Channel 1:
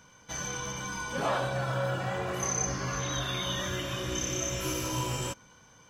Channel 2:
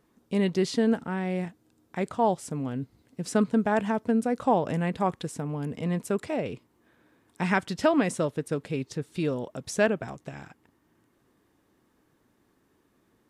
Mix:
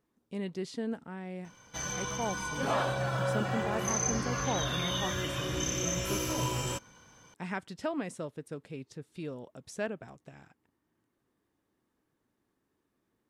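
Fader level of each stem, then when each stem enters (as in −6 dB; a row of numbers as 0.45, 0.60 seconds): −0.5, −11.5 decibels; 1.45, 0.00 seconds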